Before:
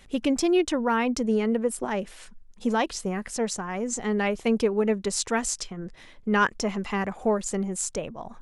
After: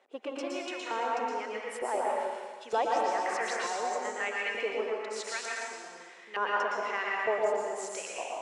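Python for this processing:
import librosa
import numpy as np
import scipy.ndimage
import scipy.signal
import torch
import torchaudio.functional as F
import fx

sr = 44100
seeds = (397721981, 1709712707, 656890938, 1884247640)

p1 = 10.0 ** (-24.5 / 20.0) * np.tanh(x / 10.0 ** (-24.5 / 20.0))
p2 = x + (p1 * librosa.db_to_amplitude(-10.5))
p3 = scipy.signal.sosfilt(scipy.signal.butter(4, 300.0, 'highpass', fs=sr, output='sos'), p2)
p4 = fx.rider(p3, sr, range_db=3, speed_s=0.5)
p5 = scipy.signal.sosfilt(scipy.signal.butter(2, 9300.0, 'lowpass', fs=sr, output='sos'), p4)
p6 = p5 + fx.echo_single(p5, sr, ms=116, db=-9.0, dry=0)
p7 = fx.filter_lfo_bandpass(p6, sr, shape='saw_up', hz=1.1, low_hz=630.0, high_hz=2800.0, q=1.4)
p8 = fx.high_shelf(p7, sr, hz=7100.0, db=9.0)
p9 = fx.rev_plate(p8, sr, seeds[0], rt60_s=1.5, hf_ratio=0.95, predelay_ms=105, drr_db=-3.0)
p10 = fx.band_squash(p9, sr, depth_pct=70, at=(2.71, 3.67))
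y = p10 * librosa.db_to_amplitude(-4.5)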